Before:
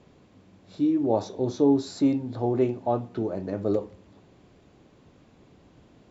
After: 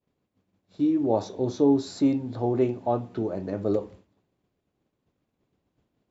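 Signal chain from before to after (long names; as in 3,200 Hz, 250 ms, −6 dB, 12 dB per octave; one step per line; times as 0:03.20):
downward expander −42 dBFS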